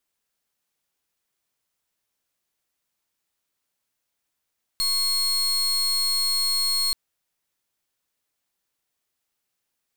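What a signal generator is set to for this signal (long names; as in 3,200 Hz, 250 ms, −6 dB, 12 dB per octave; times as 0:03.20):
pulse wave 4,300 Hz, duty 36% −23 dBFS 2.13 s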